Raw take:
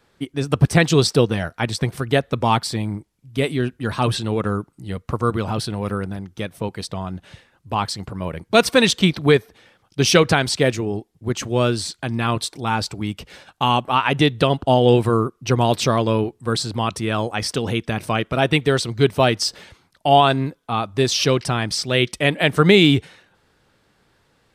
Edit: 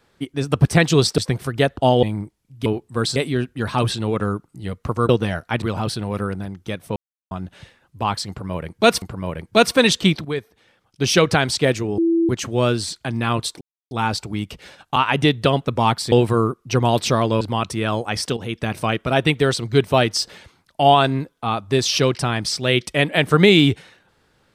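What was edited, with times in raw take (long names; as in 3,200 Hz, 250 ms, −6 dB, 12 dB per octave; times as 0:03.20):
0:01.18–0:01.71: move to 0:05.33
0:02.30–0:02.77: swap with 0:14.62–0:14.88
0:06.67–0:07.02: silence
0:08.00–0:08.73: repeat, 2 plays
0:09.23–0:10.40: fade in, from −13 dB
0:10.96–0:11.27: beep over 333 Hz −14 dBFS
0:12.59: splice in silence 0.30 s
0:13.64–0:13.93: remove
0:16.17–0:16.67: move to 0:03.40
0:17.63–0:17.91: fade in, from −12.5 dB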